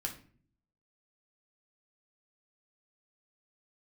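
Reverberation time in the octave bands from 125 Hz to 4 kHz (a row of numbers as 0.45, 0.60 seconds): 0.90, 0.80, 0.55, 0.40, 0.40, 0.35 seconds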